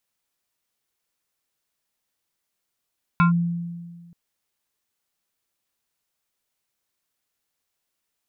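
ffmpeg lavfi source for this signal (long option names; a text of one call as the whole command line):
ffmpeg -f lavfi -i "aevalsrc='0.251*pow(10,-3*t/1.65)*sin(2*PI*171*t+1.1*clip(1-t/0.12,0,1)*sin(2*PI*7.11*171*t))':duration=0.93:sample_rate=44100" out.wav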